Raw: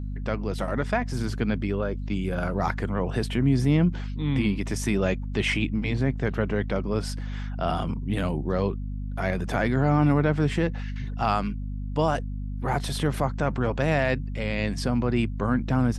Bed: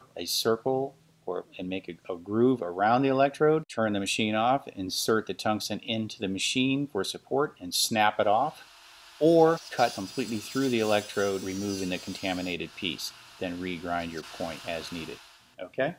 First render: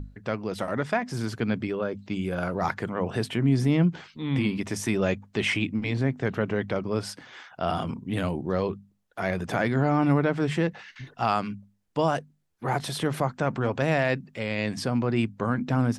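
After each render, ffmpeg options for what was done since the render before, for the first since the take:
-af "bandreject=f=50:t=h:w=6,bandreject=f=100:t=h:w=6,bandreject=f=150:t=h:w=6,bandreject=f=200:t=h:w=6,bandreject=f=250:t=h:w=6"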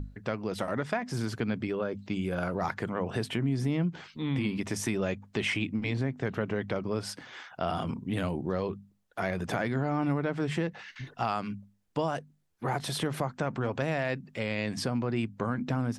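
-af "acompressor=threshold=-28dB:ratio=2.5"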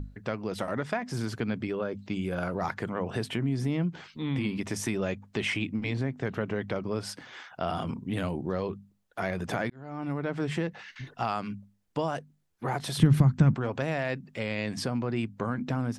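-filter_complex "[0:a]asplit=3[a][b][c];[a]afade=t=out:st=12.97:d=0.02[d];[b]asubboost=boost=11.5:cutoff=170,afade=t=in:st=12.97:d=0.02,afade=t=out:st=13.53:d=0.02[e];[c]afade=t=in:st=13.53:d=0.02[f];[d][e][f]amix=inputs=3:normalize=0,asplit=2[g][h];[g]atrim=end=9.7,asetpts=PTS-STARTPTS,afade=t=out:st=9.696:d=0.004:c=hsin[i];[h]atrim=start=9.7,asetpts=PTS-STARTPTS,afade=t=in:d=0.65[j];[i][j]concat=n=2:v=0:a=1"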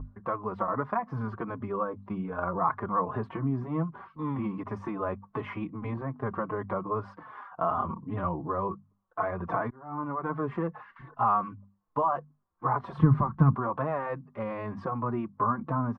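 -filter_complex "[0:a]lowpass=f=1.1k:t=q:w=8,asplit=2[a][b];[b]adelay=4.2,afreqshift=-2.6[c];[a][c]amix=inputs=2:normalize=1"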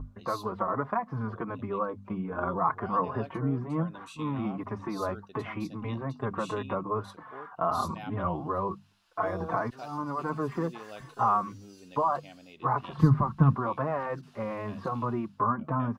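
-filter_complex "[1:a]volume=-20dB[a];[0:a][a]amix=inputs=2:normalize=0"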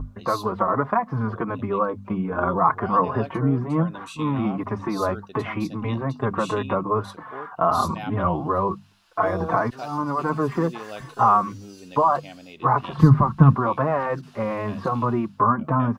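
-af "volume=8dB,alimiter=limit=-3dB:level=0:latency=1"

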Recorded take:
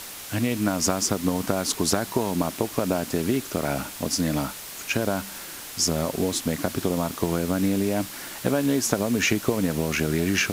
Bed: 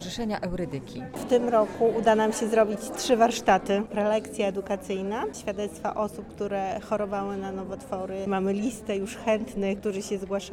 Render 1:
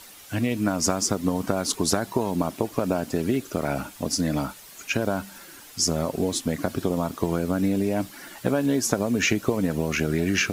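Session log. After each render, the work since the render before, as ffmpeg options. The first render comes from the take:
-af "afftdn=nr=10:nf=-38"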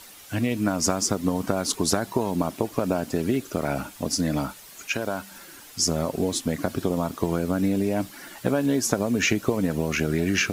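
-filter_complex "[0:a]asettb=1/sr,asplit=3[a][b][c];[a]atrim=end=4.874[d];[b]atrim=start=4.87:end=5.31,asetpts=PTS-STARTPTS,afade=t=in:d=0.004:c=qsin,afade=t=out:st=0.436:d=0.004:c=qsin,lowshelf=f=370:g=-8[e];[c]atrim=start=5.306[f];[d][e]acrossfade=d=0.004:c1=hsin:c2=qsin[g];[g][f]acrossfade=d=0.004:c1=qsin:c2=hsin"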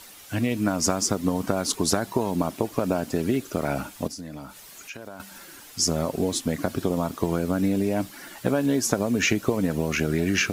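-filter_complex "[0:a]asettb=1/sr,asplit=3[a][b][c];[a]atrim=end=4.074[d];[b]atrim=start=4.07:end=5.2,asetpts=PTS-STARTPTS,afade=t=in:d=0.004:c=qsin,afade=t=out:st=1.126:d=0.004:c=qsin,acompressor=threshold=-40dB:ratio=2.5:attack=3.2:release=140:knee=1:detection=peak[e];[c]atrim=start=5.196[f];[d][e]acrossfade=d=0.004:c1=hsin:c2=qsin[g];[g][f]acrossfade=d=0.004:c1=qsin:c2=hsin"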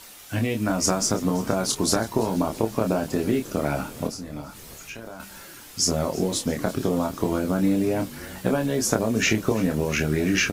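-filter_complex "[0:a]asplit=2[a][b];[b]adelay=27,volume=-5dB[c];[a][c]amix=inputs=2:normalize=0,asplit=7[d][e][f][g][h][i][j];[e]adelay=334,afreqshift=-54,volume=-19.5dB[k];[f]adelay=668,afreqshift=-108,volume=-23.2dB[l];[g]adelay=1002,afreqshift=-162,volume=-27dB[m];[h]adelay=1336,afreqshift=-216,volume=-30.7dB[n];[i]adelay=1670,afreqshift=-270,volume=-34.5dB[o];[j]adelay=2004,afreqshift=-324,volume=-38.2dB[p];[d][k][l][m][n][o][p]amix=inputs=7:normalize=0"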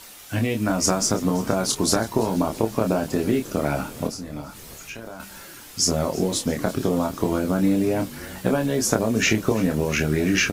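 -af "volume=1.5dB"

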